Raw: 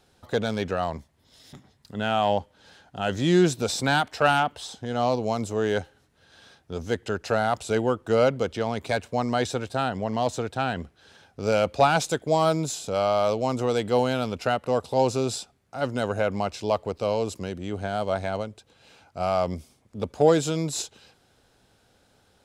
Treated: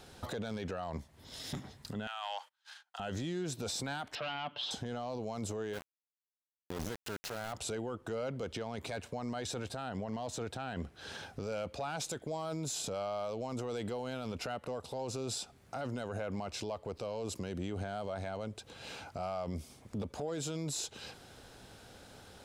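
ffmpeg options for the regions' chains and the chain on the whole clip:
-filter_complex "[0:a]asettb=1/sr,asplit=3[s0][s1][s2];[s0]atrim=end=2.074[s3];[s1]atrim=start=2.07:end=3,asetpts=PTS-STARTPTS,afade=t=in:d=0.004:c=qsin,afade=t=out:st=0.926:d=0.004:c=qsin,agate=range=0.0282:threshold=0.00251:ratio=16:release=100:detection=peak,highpass=f=1000:w=0.5412,highpass=f=1000:w=1.3066,acompressor=threshold=0.02:ratio=3:attack=3.2:release=140:knee=1:detection=peak[s4];[s2]atrim=start=2.996[s5];[s3][s4]acrossfade=d=0.004:c1=hsin:c2=qsin[s6];[s6][s5]acrossfade=d=0.004:c1=qsin:c2=hsin,asettb=1/sr,asplit=3[s7][s8][s9];[s7]atrim=end=4.154[s10];[s8]atrim=start=4.15:end=4.71,asetpts=PTS-STARTPTS,afade=t=in:d=0.004:c=qsin,afade=t=out:st=0.556:d=0.004:c=qsin,aecho=1:1:6.9:0.64,atrim=end_sample=24696,volume=7.94,asoftclip=hard,volume=0.126,highpass=190,equalizer=f=280:t=q:w=4:g=-4,equalizer=f=440:t=q:w=4:g=-10,equalizer=f=780:t=q:w=4:g=-7,equalizer=f=1300:t=q:w=4:g=-3,equalizer=f=1900:t=q:w=4:g=-6,equalizer=f=3100:t=q:w=4:g=6,lowpass=f=3900:w=0.5412,lowpass=f=3900:w=1.3066[s11];[s9]atrim=start=4.706[s12];[s10][s11]acrossfade=d=0.004:c1=hsin:c2=qsin[s13];[s13][s12]acrossfade=d=0.004:c1=qsin:c2=hsin,asettb=1/sr,asplit=3[s14][s15][s16];[s14]atrim=end=5.734[s17];[s15]atrim=start=5.73:end=7.53,asetpts=PTS-STARTPTS,afade=t=in:d=0.004:c=qsin,afade=t=out:st=1.796:d=0.004:c=qsin,acompressor=threshold=0.0316:ratio=8:attack=3.2:release=140:knee=1:detection=peak,aeval=exprs='val(0)*gte(abs(val(0)),0.0178)':c=same[s18];[s16]atrim=start=7.526[s19];[s17][s18]acrossfade=d=0.004:c1=hsin:c2=qsin[s20];[s20][s19]acrossfade=d=0.004:c1=qsin:c2=hsin,acompressor=threshold=0.00891:ratio=3,alimiter=level_in=4.73:limit=0.0631:level=0:latency=1:release=19,volume=0.211,volume=2.51"

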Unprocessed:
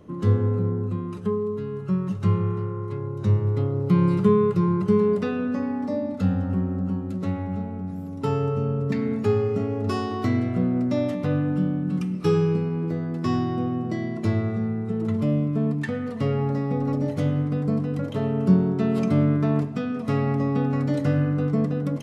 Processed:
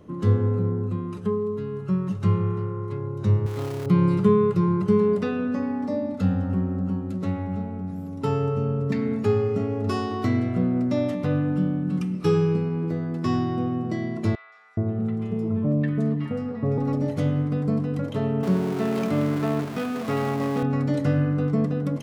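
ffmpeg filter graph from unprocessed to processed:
-filter_complex "[0:a]asettb=1/sr,asplit=3[s0][s1][s2];[s0]atrim=end=3.464[s3];[s1]atrim=start=3.46:end=3.86,asetpts=PTS-STARTPTS,afade=t=in:d=0.004:c=qsin,afade=t=out:st=0.396:d=0.004:c=qsin,aeval=exprs='val(0)+0.5*0.0335*sgn(val(0))':c=same,lowshelf=f=320:g=-10[s4];[s2]atrim=start=3.856[s5];[s3][s4]acrossfade=d=0.004:c1=hsin:c2=qsin[s6];[s6][s5]acrossfade=d=0.004:c1=qsin:c2=hsin,asettb=1/sr,asplit=3[s7][s8][s9];[s7]atrim=end=14.354[s10];[s8]atrim=start=14.35:end=16.78,asetpts=PTS-STARTPTS,afade=t=in:d=0.004:c=qsin,afade=t=out:st=2.426:d=0.004:c=qsin,highpass=55,highshelf=f=2200:g=-7.5,acrossover=split=1200|4300[s11][s12][s13];[s13]adelay=170[s14];[s11]adelay=420[s15];[s15][s12][s14]amix=inputs=3:normalize=0,atrim=end_sample=107163[s16];[s9]atrim=start=16.776[s17];[s10][s16]acrossfade=d=0.004:c1=hsin:c2=qsin[s18];[s18][s17]acrossfade=d=0.004:c1=qsin:c2=hsin,asettb=1/sr,asplit=3[s19][s20][s21];[s19]atrim=end=18.434[s22];[s20]atrim=start=18.43:end=20.63,asetpts=PTS-STARTPTS,afade=t=in:d=0.004:c=qsin,afade=t=out:st=2.196:d=0.004:c=qsin,aeval=exprs='val(0)+0.5*0.0398*sgn(val(0))':c=same,highpass=55,bass=f=250:g=-8,treble=f=4000:g=-4[s23];[s21]atrim=start=20.626[s24];[s22][s23]acrossfade=d=0.004:c1=hsin:c2=qsin[s25];[s25][s24]acrossfade=d=0.004:c1=qsin:c2=hsin"

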